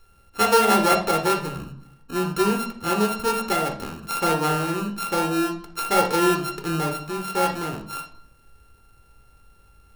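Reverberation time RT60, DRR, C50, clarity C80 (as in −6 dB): 0.60 s, 3.5 dB, 9.0 dB, 13.5 dB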